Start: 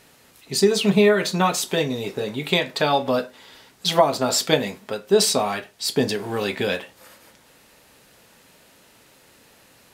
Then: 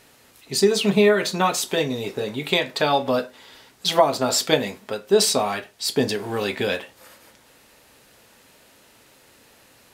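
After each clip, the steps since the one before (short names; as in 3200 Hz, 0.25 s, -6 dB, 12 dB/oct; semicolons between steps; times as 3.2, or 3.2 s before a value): bell 170 Hz -6.5 dB 0.26 oct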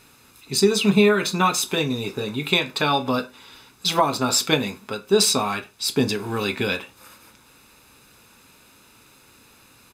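comb 0.8 ms, depth 55%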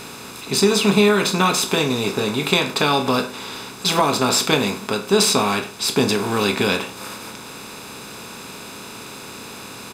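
per-bin compression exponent 0.6; gain -1 dB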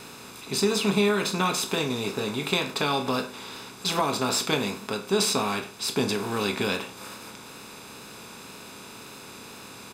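wow and flutter 21 cents; gain -7.5 dB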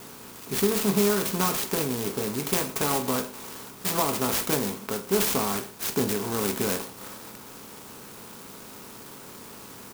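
clock jitter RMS 0.11 ms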